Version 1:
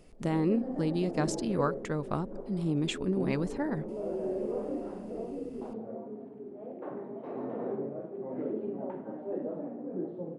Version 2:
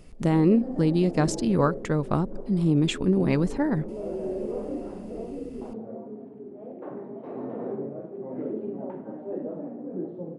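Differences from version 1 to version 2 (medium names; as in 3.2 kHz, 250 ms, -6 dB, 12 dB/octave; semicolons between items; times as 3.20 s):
speech +5.0 dB; master: add bass shelf 390 Hz +4.5 dB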